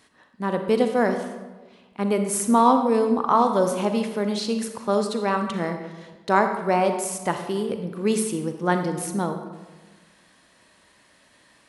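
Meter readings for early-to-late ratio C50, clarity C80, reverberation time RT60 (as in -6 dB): 7.0 dB, 9.0 dB, 1.3 s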